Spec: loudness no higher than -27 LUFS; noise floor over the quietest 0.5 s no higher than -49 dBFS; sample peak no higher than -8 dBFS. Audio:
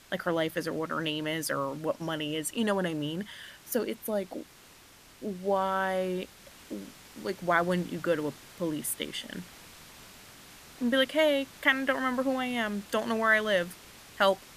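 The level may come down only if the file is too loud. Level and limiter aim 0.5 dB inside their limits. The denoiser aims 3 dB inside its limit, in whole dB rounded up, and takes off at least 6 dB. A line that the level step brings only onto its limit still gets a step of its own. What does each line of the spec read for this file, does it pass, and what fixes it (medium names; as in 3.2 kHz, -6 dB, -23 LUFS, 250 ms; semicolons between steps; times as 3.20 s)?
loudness -30.0 LUFS: pass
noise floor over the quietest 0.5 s -55 dBFS: pass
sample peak -10.0 dBFS: pass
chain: none needed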